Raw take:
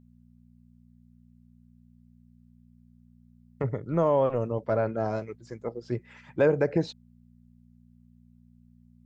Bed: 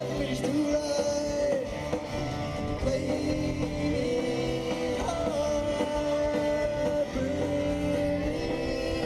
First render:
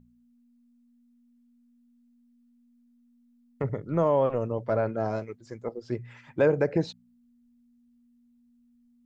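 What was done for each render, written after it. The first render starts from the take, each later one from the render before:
hum removal 60 Hz, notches 3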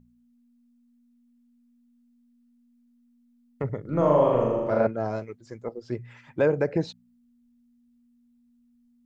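0:03.81–0:04.87: flutter between parallel walls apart 6.9 metres, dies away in 1.2 s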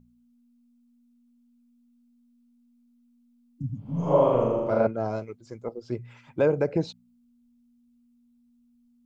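0:03.59–0:04.13: healed spectral selection 300–4,900 Hz both
parametric band 1,800 Hz −10.5 dB 0.24 octaves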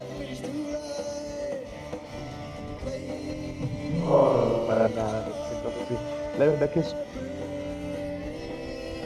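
mix in bed −5.5 dB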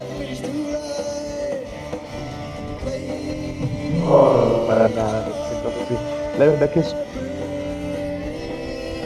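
level +7 dB

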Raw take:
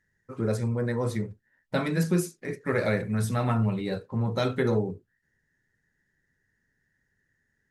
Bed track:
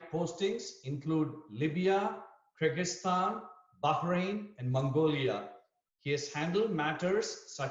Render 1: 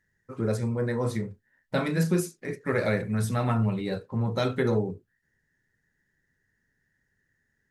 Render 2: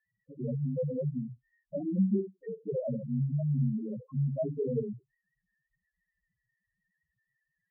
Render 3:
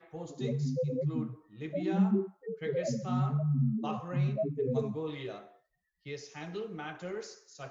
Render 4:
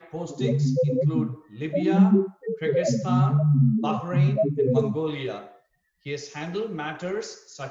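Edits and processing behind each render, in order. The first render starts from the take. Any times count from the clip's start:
0:00.59–0:02.20: double-tracking delay 31 ms −11.5 dB
spectral peaks only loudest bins 2; frequency shifter +26 Hz
mix in bed track −8.5 dB
level +9.5 dB

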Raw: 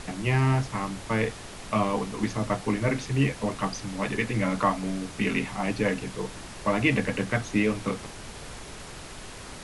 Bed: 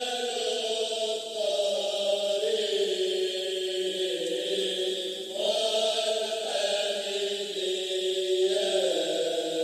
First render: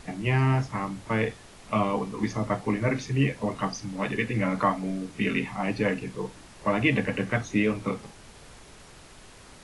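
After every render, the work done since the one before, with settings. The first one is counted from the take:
noise reduction from a noise print 8 dB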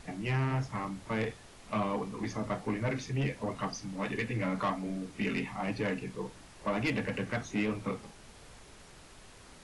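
soft clipping −20 dBFS, distortion −14 dB
flanger 1.4 Hz, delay 1.1 ms, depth 4.4 ms, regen −73%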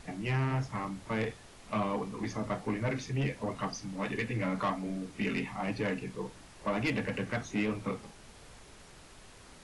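no processing that can be heard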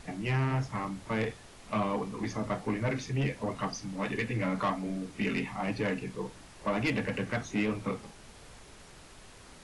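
level +1.5 dB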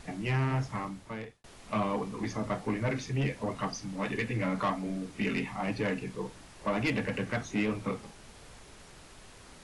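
0:00.72–0:01.44: fade out

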